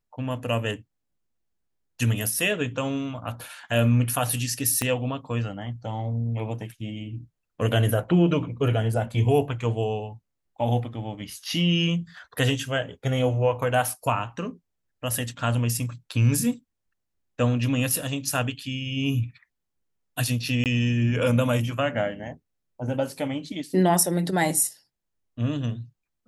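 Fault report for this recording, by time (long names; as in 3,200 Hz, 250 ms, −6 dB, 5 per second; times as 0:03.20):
0:04.82: click −9 dBFS
0:20.64–0:20.66: drop-out 18 ms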